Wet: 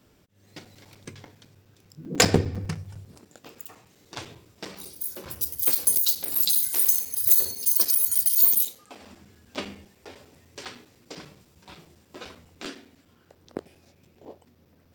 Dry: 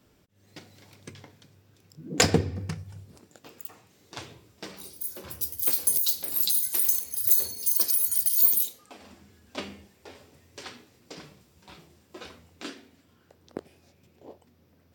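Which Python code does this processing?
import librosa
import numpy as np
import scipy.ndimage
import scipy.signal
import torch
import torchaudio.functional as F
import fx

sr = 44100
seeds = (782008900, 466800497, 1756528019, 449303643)

y = 10.0 ** (-7.0 / 20.0) * (np.abs((x / 10.0 ** (-7.0 / 20.0) + 3.0) % 4.0 - 2.0) - 1.0)
y = fx.room_flutter(y, sr, wall_m=10.2, rt60_s=0.32, at=(6.42, 7.71))
y = fx.buffer_crackle(y, sr, first_s=0.65, period_s=0.1, block=256, kind='zero')
y = y * librosa.db_to_amplitude(2.5)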